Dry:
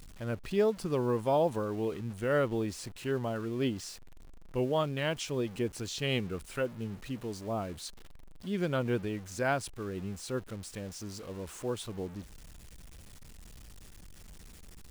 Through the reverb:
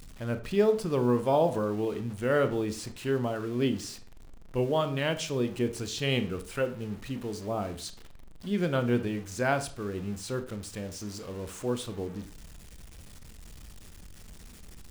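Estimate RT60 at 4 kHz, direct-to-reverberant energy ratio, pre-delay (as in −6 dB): 0.30 s, 9.0 dB, 24 ms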